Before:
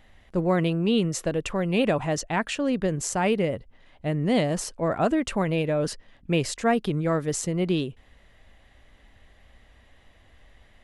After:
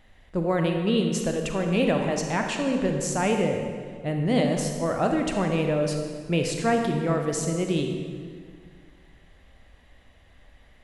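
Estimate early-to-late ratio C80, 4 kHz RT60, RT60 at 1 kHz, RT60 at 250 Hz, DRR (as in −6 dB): 5.5 dB, 1.5 s, 1.8 s, 2.3 s, 3.0 dB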